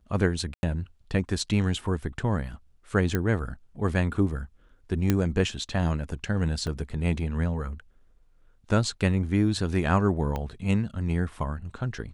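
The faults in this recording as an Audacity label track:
0.540000	0.630000	dropout 91 ms
3.150000	3.150000	pop -12 dBFS
5.100000	5.100000	pop -9 dBFS
6.670000	6.670000	dropout 2.4 ms
10.360000	10.360000	pop -18 dBFS

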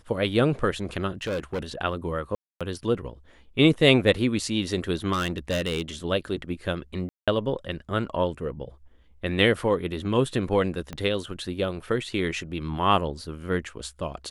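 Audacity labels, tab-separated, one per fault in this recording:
1.220000	1.640000	clipped -25 dBFS
2.350000	2.610000	dropout 256 ms
5.120000	5.820000	clipped -22 dBFS
7.090000	7.280000	dropout 186 ms
10.930000	10.930000	pop -19 dBFS

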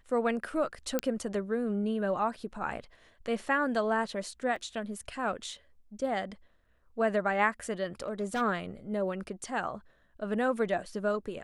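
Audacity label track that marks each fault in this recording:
0.990000	0.990000	pop -13 dBFS
4.560000	4.560000	dropout 4.2 ms
8.020000	8.420000	clipped -27 dBFS

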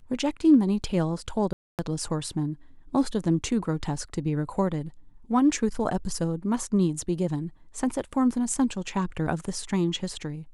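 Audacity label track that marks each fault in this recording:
1.530000	1.790000	dropout 258 ms

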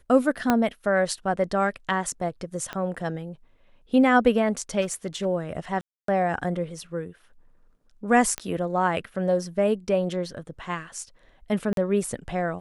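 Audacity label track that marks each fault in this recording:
0.500000	0.500000	pop -7 dBFS
2.730000	2.730000	pop -18 dBFS
4.810000	5.260000	clipped -23 dBFS
5.810000	6.080000	dropout 273 ms
8.380000	8.380000	pop -12 dBFS
11.730000	11.770000	dropout 42 ms

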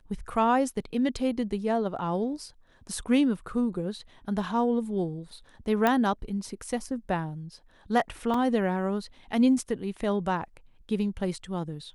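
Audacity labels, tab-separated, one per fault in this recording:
5.870000	5.870000	pop -11 dBFS
8.340000	8.340000	dropout 3.4 ms

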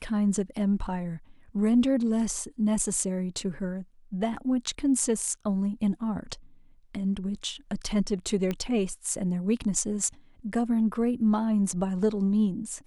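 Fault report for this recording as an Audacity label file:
8.510000	8.510000	pop -17 dBFS

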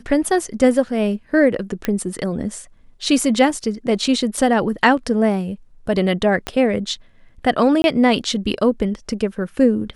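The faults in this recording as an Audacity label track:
1.850000	1.850000	pop -7 dBFS
4.370000	4.370000	dropout 4.3 ms
6.470000	6.470000	pop -9 dBFS
7.820000	7.840000	dropout 21 ms

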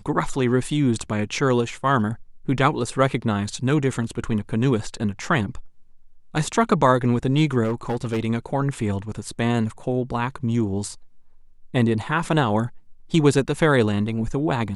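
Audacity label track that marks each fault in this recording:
7.630000	8.260000	clipped -19.5 dBFS

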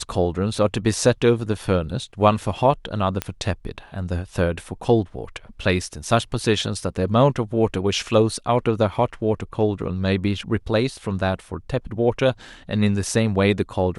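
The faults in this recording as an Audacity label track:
3.220000	3.220000	pop -8 dBFS

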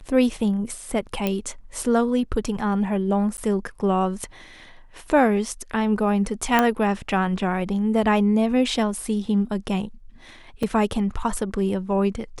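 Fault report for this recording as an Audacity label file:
1.270000	1.270000	pop -10 dBFS
3.370000	3.380000	dropout 9.9 ms
6.590000	6.590000	pop -5 dBFS
10.630000	10.630000	dropout 3.9 ms

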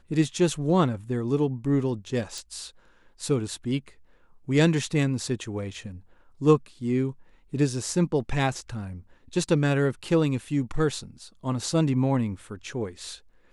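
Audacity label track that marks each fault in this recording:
2.380000	2.380000	pop

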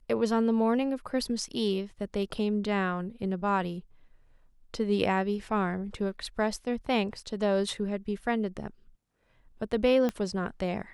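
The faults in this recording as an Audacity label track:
10.090000	10.090000	pop -17 dBFS

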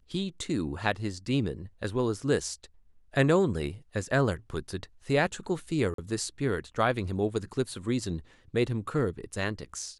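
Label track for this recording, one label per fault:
5.940000	5.980000	dropout 43 ms

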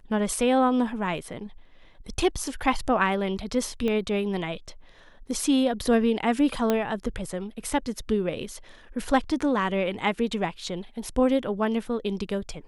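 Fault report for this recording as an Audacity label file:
3.880000	3.880000	pop -17 dBFS
6.700000	6.700000	pop -10 dBFS

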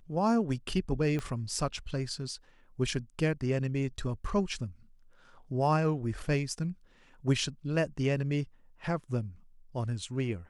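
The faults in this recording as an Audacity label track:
1.190000	1.190000	pop -22 dBFS

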